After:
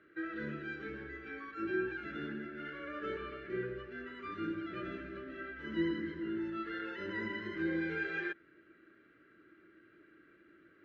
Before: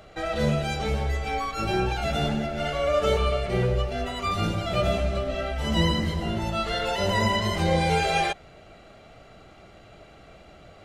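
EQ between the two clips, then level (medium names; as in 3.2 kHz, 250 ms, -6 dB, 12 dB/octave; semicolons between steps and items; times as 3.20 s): two resonant band-passes 730 Hz, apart 2.3 oct; distance through air 120 m; 0.0 dB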